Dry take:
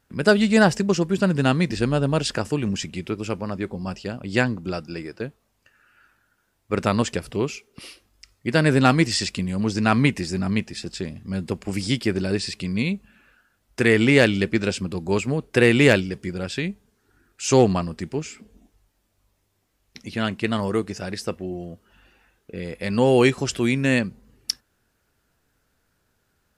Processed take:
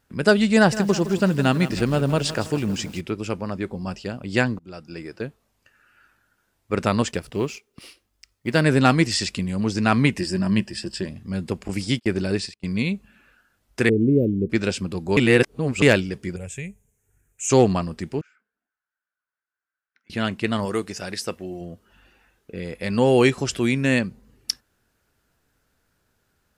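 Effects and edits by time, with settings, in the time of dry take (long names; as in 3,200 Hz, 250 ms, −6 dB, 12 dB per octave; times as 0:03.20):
0:00.56–0:03.01: feedback echo at a low word length 162 ms, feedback 55%, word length 6 bits, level −13 dB
0:04.59–0:05.15: fade in, from −23.5 dB
0:07.11–0:08.61: mu-law and A-law mismatch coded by A
0:10.19–0:11.08: EQ curve with evenly spaced ripples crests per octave 1.3, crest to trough 9 dB
0:11.68–0:12.79: noise gate −30 dBFS, range −33 dB
0:13.89–0:14.50: inverse Chebyshev band-stop filter 850–9,600 Hz
0:15.17–0:15.82: reverse
0:16.36–0:17.50: drawn EQ curve 130 Hz 0 dB, 310 Hz −19 dB, 450 Hz −6 dB, 940 Hz −12 dB, 1,300 Hz −18 dB, 2,300 Hz −4 dB, 4,700 Hz −25 dB, 6,700 Hz +5 dB, 13,000 Hz +1 dB
0:18.21–0:20.10: resonant band-pass 1,500 Hz, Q 12
0:20.65–0:21.61: spectral tilt +1.5 dB per octave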